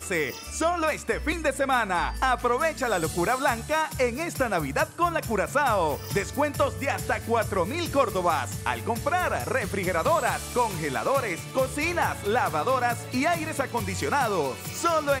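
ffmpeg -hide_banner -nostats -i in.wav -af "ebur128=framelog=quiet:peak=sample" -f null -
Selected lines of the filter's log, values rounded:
Integrated loudness:
  I:         -25.9 LUFS
  Threshold: -35.9 LUFS
Loudness range:
  LRA:         1.0 LU
  Threshold: -45.9 LUFS
  LRA low:   -26.3 LUFS
  LRA high:  -25.3 LUFS
Sample peak:
  Peak:       -9.7 dBFS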